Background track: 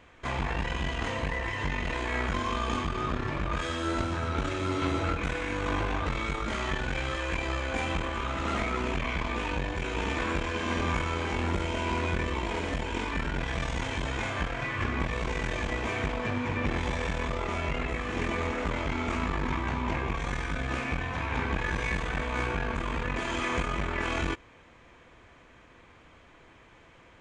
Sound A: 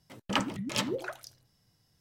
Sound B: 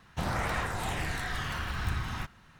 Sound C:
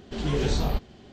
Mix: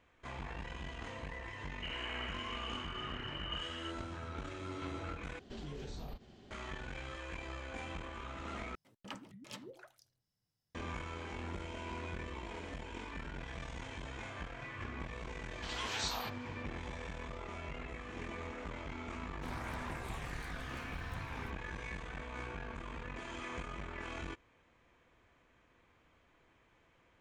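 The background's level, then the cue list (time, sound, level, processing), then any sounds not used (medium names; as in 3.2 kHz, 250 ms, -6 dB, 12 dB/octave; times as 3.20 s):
background track -13.5 dB
1.65 s: add B -13.5 dB + frequency inversion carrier 3 kHz
5.39 s: replace with C -8.5 dB + compression, threshold -33 dBFS
8.75 s: replace with A -18 dB
15.51 s: add C -2 dB + Chebyshev high-pass 940 Hz, order 3
19.25 s: add B -13.5 dB + warped record 78 rpm, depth 160 cents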